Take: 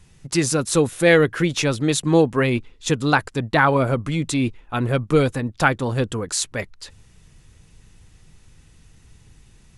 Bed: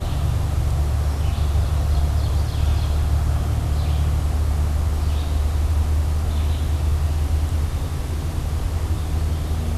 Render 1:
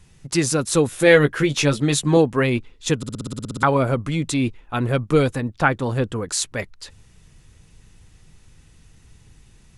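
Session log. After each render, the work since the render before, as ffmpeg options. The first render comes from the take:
-filter_complex "[0:a]asettb=1/sr,asplit=3[s0][s1][s2];[s0]atrim=end=0.894[s3];[s1]atrim=start=0.89:end=2.17,asetpts=PTS-STARTPTS,afade=t=in:d=0.004:c=qsin,afade=t=out:st=1.276:d=0.004:c=qsin,asplit=2[s4][s5];[s5]adelay=14,volume=0.531[s6];[s4][s6]amix=inputs=2:normalize=0,atrim=end_sample=56448[s7];[s2]atrim=start=2.166[s8];[s3][s7]acrossfade=d=0.004:c1=hsin:c2=qsin[s9];[s9][s8]acrossfade=d=0.004:c1=qsin:c2=hsin,asettb=1/sr,asplit=3[s10][s11][s12];[s10]atrim=end=5.514[s13];[s11]atrim=start=5.51:end=6.16,asetpts=PTS-STARTPTS,afade=t=in:d=0.004:c=qsin,afade=t=out:st=0.646:d=0.004:c=qsin,acrossover=split=2700[s14][s15];[s15]acompressor=threshold=0.0112:ratio=4:attack=1:release=60[s16];[s14][s16]amix=inputs=2:normalize=0[s17];[s12]atrim=start=6.156[s18];[s13][s17]acrossfade=d=0.004:c1=hsin:c2=qsin[s19];[s19][s18]acrossfade=d=0.004:c1=qsin:c2=hsin,asplit=12[s20][s21][s22][s23][s24][s25][s26][s27][s28][s29][s30][s31];[s20]atrim=end=3.032[s32];[s21]atrim=start=2.968:end=3.032[s33];[s22]atrim=start=2.968:end=3.032[s34];[s23]atrim=start=2.968:end=3.032[s35];[s24]atrim=start=2.968:end=3.032[s36];[s25]atrim=start=2.968:end=3.032[s37];[s26]atrim=start=2.968:end=3.032[s38];[s27]atrim=start=2.968:end=3.032[s39];[s28]atrim=start=2.968:end=3.032[s40];[s29]atrim=start=2.968:end=3.032[s41];[s30]atrim=start=2.968:end=3.032[s42];[s31]atrim=start=3.628[s43];[s32][s33]acrossfade=d=0.004:c1=hsin:c2=hsin[s44];[s44][s34]acrossfade=d=0.004:c1=hsin:c2=hsin[s45];[s45][s35]acrossfade=d=0.004:c1=hsin:c2=hsin[s46];[s46][s36]acrossfade=d=0.004:c1=hsin:c2=hsin[s47];[s47][s37]acrossfade=d=0.004:c1=hsin:c2=hsin[s48];[s48][s38]acrossfade=d=0.004:c1=hsin:c2=hsin[s49];[s49][s39]acrossfade=d=0.004:c1=hsin:c2=hsin[s50];[s50][s40]acrossfade=d=0.004:c1=hsin:c2=hsin[s51];[s51][s41]acrossfade=d=0.004:c1=hsin:c2=hsin[s52];[s52][s42]acrossfade=d=0.004:c1=hsin:c2=hsin[s53];[s53][s43]acrossfade=d=0.004:c1=hsin:c2=hsin"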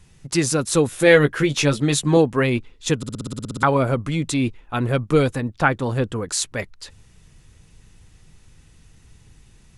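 -af anull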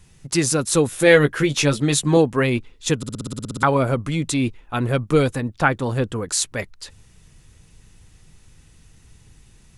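-af "highshelf=f=7700:g=4.5"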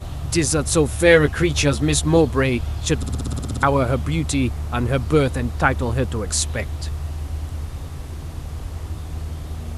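-filter_complex "[1:a]volume=0.447[s0];[0:a][s0]amix=inputs=2:normalize=0"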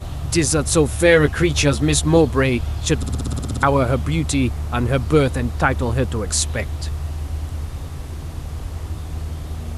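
-af "volume=1.19,alimiter=limit=0.708:level=0:latency=1"

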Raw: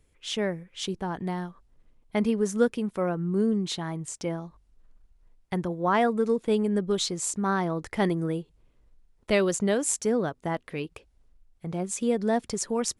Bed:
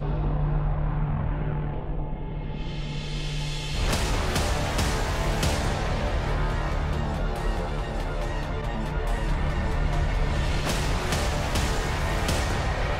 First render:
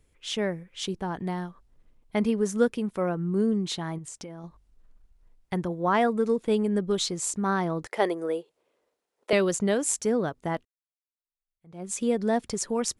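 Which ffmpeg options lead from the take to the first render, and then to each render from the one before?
-filter_complex "[0:a]asettb=1/sr,asplit=3[s0][s1][s2];[s0]atrim=end=3.984[s3];[s1]atrim=start=3.98:end=4.44,asetpts=PTS-STARTPTS,afade=t=in:d=0.004:c=qsin,afade=t=out:st=0.456:d=0.004:c=qsin,acompressor=threshold=0.0158:ratio=10:attack=3.2:release=140:knee=1:detection=peak[s4];[s2]atrim=start=4.436[s5];[s3][s4]acrossfade=d=0.004:c1=hsin:c2=qsin[s6];[s6][s5]acrossfade=d=0.004:c1=qsin:c2=hsin,asettb=1/sr,asplit=3[s7][s8][s9];[s7]atrim=end=7.864[s10];[s8]atrim=start=7.86:end=9.33,asetpts=PTS-STARTPTS,afade=t=in:d=0.004:c=qsin,afade=t=out:st=1.466:d=0.004:c=qsin,highpass=f=490:t=q:w=1.9[s11];[s9]atrim=start=9.326[s12];[s10][s11]acrossfade=d=0.004:c1=hsin:c2=qsin[s13];[s13][s12]acrossfade=d=0.004:c1=qsin:c2=hsin,asplit=2[s14][s15];[s14]atrim=end=10.65,asetpts=PTS-STARTPTS,afade=t=out:st=10.646:d=0.004:c=hsin[s16];[s15]atrim=start=10.65,asetpts=PTS-STARTPTS,afade=t=in:d=1.26:c=exp[s17];[s16][s17]concat=n=2:v=0:a=1"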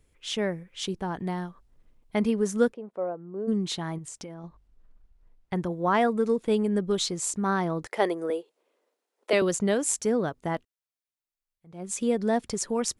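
-filter_complex "[0:a]asplit=3[s0][s1][s2];[s0]afade=t=out:st=2.72:d=0.02[s3];[s1]bandpass=f=600:t=q:w=2,afade=t=in:st=2.72:d=0.02,afade=t=out:st=3.47:d=0.02[s4];[s2]afade=t=in:st=3.47:d=0.02[s5];[s3][s4][s5]amix=inputs=3:normalize=0,asettb=1/sr,asplit=3[s6][s7][s8];[s6]atrim=end=4.344[s9];[s7]atrim=start=4.34:end=5.56,asetpts=PTS-STARTPTS,afade=t=in:d=0.004:c=qsin,afade=t=out:st=1.216:d=0.004:c=qsin,lowpass=f=3300:p=1[s10];[s8]atrim=start=5.556[s11];[s9][s10]acrossfade=d=0.004:c1=hsin:c2=qsin[s12];[s12][s11]acrossfade=d=0.004:c1=qsin:c2=hsin,asettb=1/sr,asplit=3[s13][s14][s15];[s13]atrim=end=8.304[s16];[s14]atrim=start=8.3:end=9.42,asetpts=PTS-STARTPTS,afade=t=in:d=0.004:c=qsin,afade=t=out:st=1.116:d=0.004:c=qsin,highpass=f=220:w=0.5412,highpass=f=220:w=1.3066[s17];[s15]atrim=start=9.416[s18];[s16][s17]acrossfade=d=0.004:c1=hsin:c2=qsin[s19];[s19][s18]acrossfade=d=0.004:c1=qsin:c2=hsin"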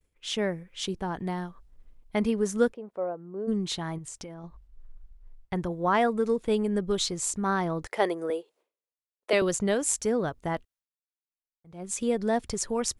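-af "agate=range=0.0224:threshold=0.00141:ratio=3:detection=peak,asubboost=boost=3:cutoff=99"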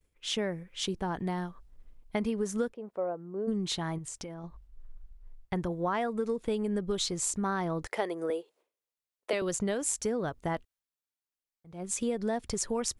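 -af "acompressor=threshold=0.0447:ratio=6"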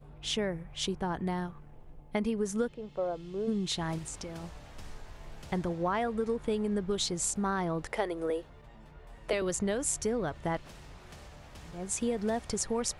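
-filter_complex "[1:a]volume=0.0631[s0];[0:a][s0]amix=inputs=2:normalize=0"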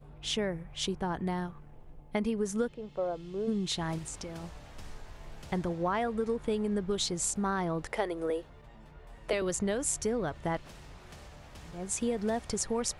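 -af anull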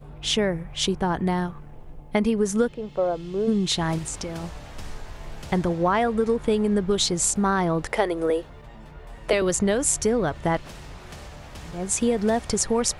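-af "volume=2.82"

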